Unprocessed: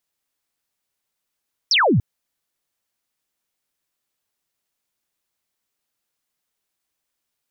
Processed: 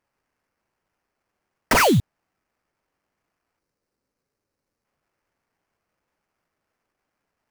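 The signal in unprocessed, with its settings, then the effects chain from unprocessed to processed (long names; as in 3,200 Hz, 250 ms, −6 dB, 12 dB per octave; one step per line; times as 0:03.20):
single falling chirp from 5,900 Hz, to 89 Hz, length 0.29 s sine, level −13 dB
sample-rate reduction 3,700 Hz, jitter 20%
gain on a spectral selection 0:03.59–0:04.85, 590–3,700 Hz −7 dB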